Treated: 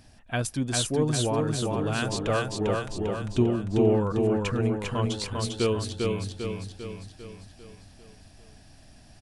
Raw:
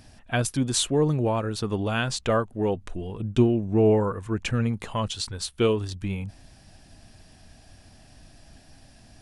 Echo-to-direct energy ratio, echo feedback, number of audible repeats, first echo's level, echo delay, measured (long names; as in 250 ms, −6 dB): −1.5 dB, 53%, 6, −3.0 dB, 398 ms